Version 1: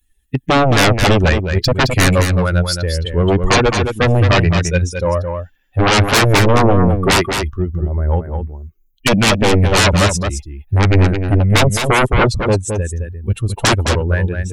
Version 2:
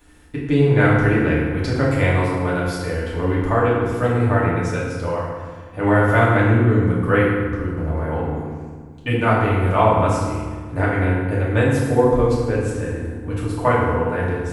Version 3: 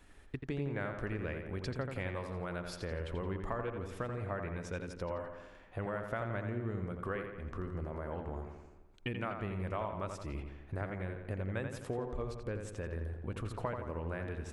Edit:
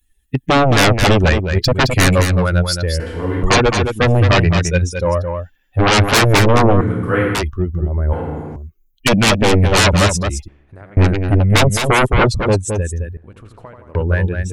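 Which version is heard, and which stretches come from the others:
1
3–3.43 from 2
6.81–7.35 from 2
8.13–8.56 from 2
10.48–10.97 from 3
13.17–13.95 from 3

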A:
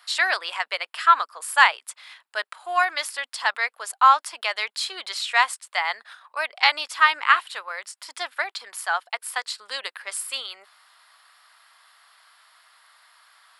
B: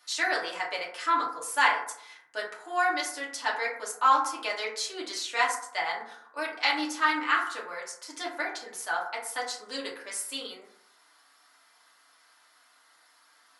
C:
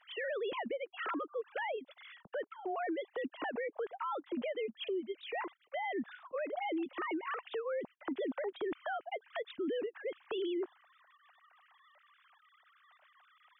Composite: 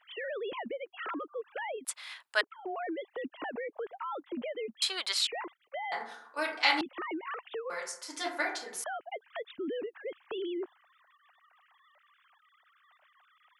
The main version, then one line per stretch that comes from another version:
C
1.85–2.41 from A
4.82–5.27 from A
5.92–6.81 from B
7.7–8.84 from B

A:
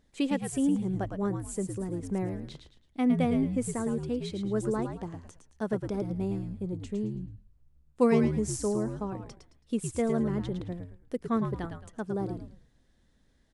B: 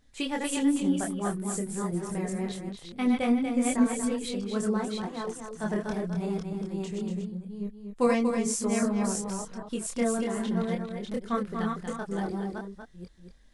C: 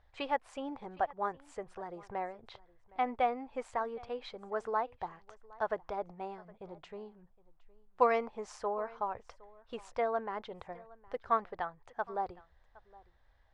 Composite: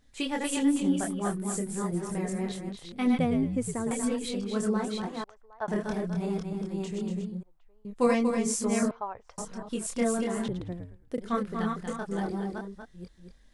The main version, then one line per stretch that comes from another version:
B
3.19–3.91 from A
5.24–5.68 from C
7.43–7.85 from C
8.91–9.38 from C
10.48–11.18 from A

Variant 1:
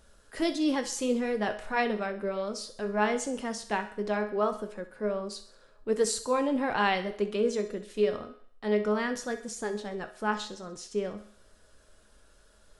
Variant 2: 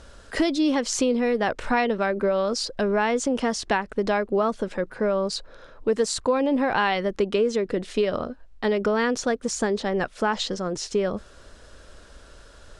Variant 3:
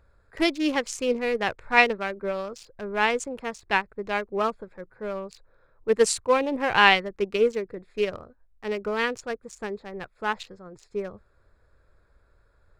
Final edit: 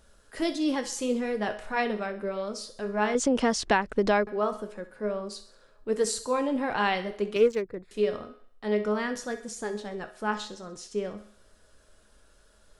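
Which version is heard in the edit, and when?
1
3.15–4.27 from 2
7.36–7.91 from 3

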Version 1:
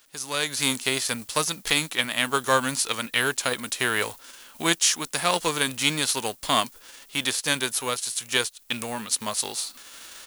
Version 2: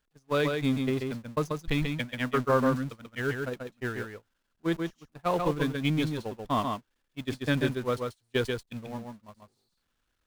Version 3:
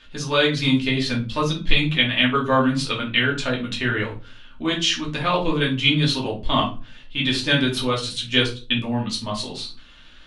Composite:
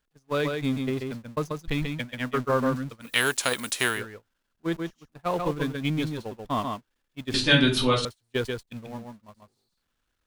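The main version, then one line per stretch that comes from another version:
2
3.08–3.95 from 1, crossfade 0.16 s
7.34–8.05 from 3

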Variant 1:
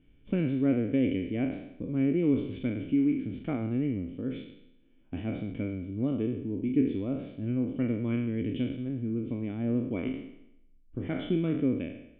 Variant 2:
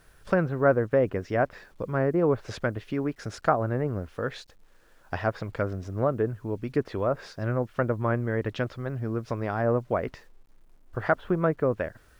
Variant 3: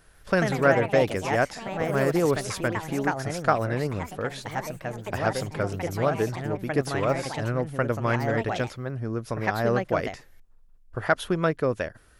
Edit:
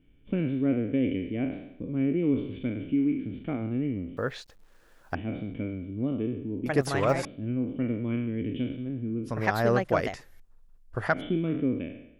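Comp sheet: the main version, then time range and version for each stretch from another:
1
4.17–5.15 from 2
6.66–7.25 from 3
9.3–11.14 from 3, crossfade 0.16 s

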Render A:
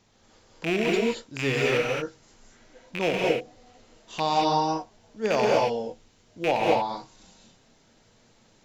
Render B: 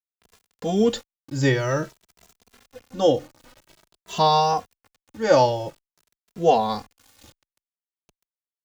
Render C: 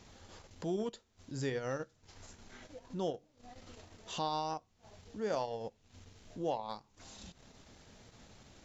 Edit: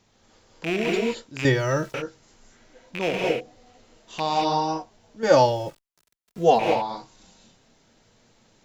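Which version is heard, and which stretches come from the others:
A
1.45–1.94 from B
5.23–6.59 from B
not used: C

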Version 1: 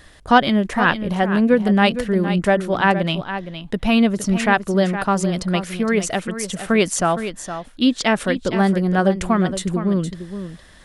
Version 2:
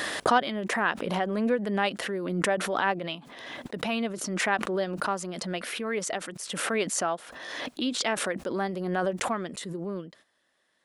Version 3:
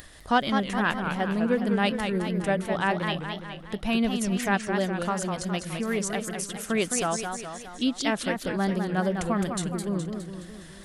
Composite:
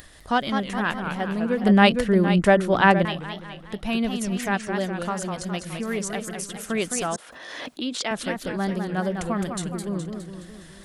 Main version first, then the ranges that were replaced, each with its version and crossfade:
3
1.64–3.05 from 1
7.16–8.11 from 2

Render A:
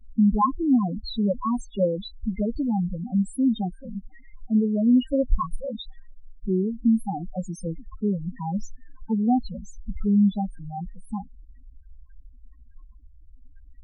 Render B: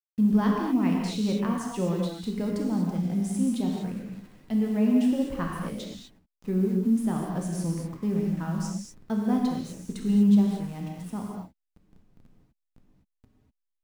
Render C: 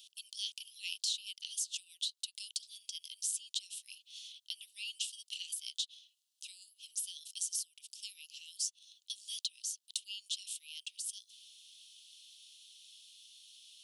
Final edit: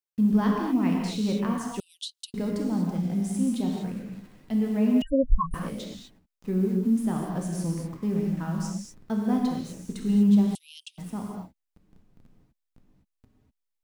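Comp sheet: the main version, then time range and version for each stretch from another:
B
1.8–2.34 from C
5.02–5.54 from A
10.55–10.98 from C

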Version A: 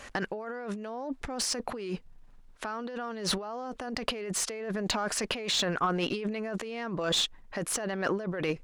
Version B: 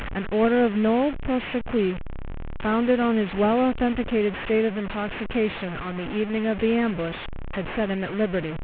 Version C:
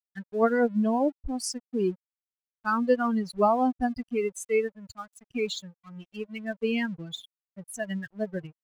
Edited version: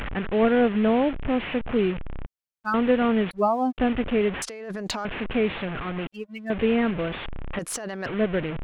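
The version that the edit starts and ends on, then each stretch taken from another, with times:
B
2.26–2.74 from C
3.31–3.78 from C
4.42–5.05 from A
6.07–6.5 from C
7.59–8.06 from A

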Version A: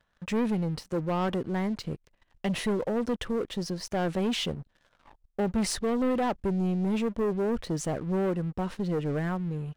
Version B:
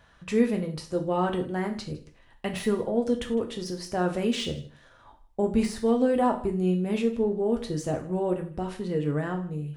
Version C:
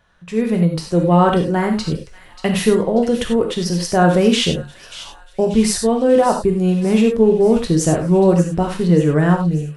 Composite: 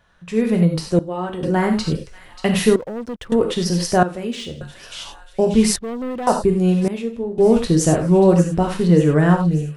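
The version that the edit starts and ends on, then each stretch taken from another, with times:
C
0.99–1.43 from B
2.76–3.32 from A
4.03–4.61 from B
5.76–6.27 from A
6.88–7.38 from B

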